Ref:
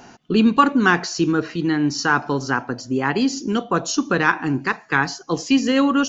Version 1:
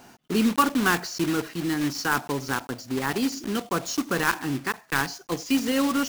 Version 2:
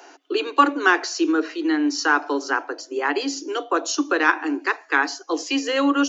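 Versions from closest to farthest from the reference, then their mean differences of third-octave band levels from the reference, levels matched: 2, 1; 5.5, 8.0 dB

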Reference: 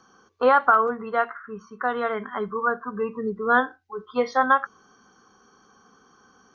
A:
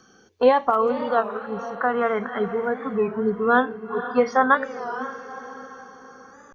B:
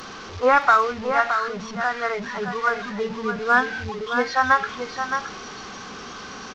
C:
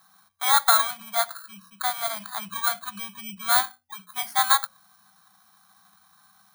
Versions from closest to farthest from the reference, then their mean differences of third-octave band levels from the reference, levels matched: A, B, C; 5.5, 10.0, 15.5 dB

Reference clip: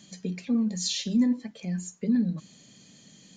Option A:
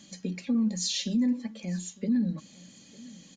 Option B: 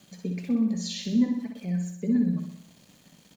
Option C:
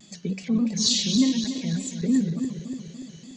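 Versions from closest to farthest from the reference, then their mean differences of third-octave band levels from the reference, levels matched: A, B, C; 2.0, 4.0, 6.5 dB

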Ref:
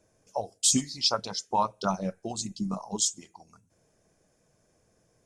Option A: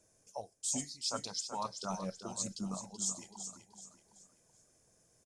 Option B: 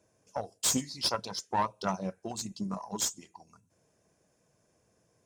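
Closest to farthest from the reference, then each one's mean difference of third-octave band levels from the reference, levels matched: B, A; 4.5, 7.5 dB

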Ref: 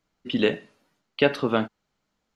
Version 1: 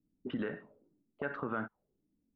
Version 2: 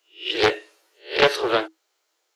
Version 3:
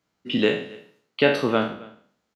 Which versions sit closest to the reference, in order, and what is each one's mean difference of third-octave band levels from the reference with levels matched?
3, 1, 2; 3.5, 6.0, 9.0 dB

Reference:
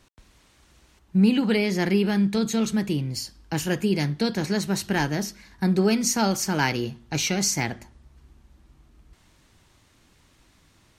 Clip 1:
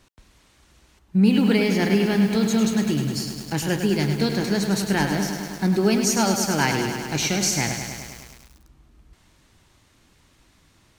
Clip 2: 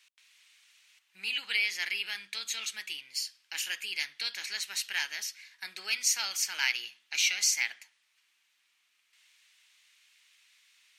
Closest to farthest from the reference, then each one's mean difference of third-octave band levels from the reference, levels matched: 1, 2; 6.5, 13.5 dB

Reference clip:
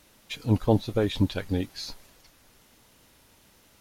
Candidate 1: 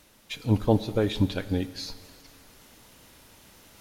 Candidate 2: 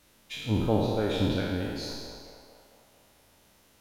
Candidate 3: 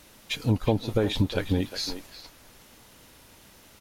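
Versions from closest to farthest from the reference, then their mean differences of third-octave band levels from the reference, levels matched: 1, 3, 2; 2.5, 5.0, 8.0 dB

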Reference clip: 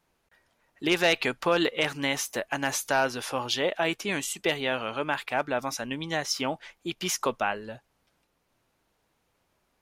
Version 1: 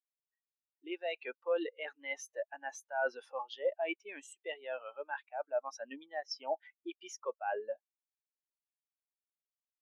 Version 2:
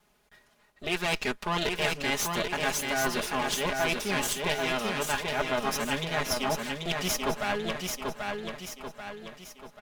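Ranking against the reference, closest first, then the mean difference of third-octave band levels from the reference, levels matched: 2, 1; 10.0, 16.5 dB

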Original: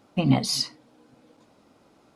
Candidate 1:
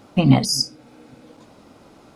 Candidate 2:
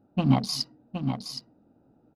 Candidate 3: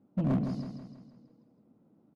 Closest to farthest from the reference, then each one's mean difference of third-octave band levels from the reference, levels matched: 1, 2, 3; 3.0, 6.5, 8.5 dB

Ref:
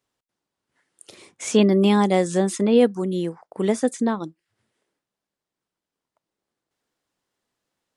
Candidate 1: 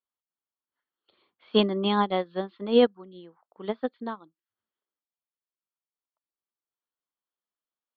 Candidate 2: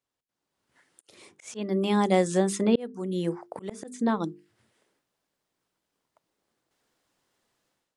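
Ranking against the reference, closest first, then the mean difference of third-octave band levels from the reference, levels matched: 2, 1; 4.5, 7.0 dB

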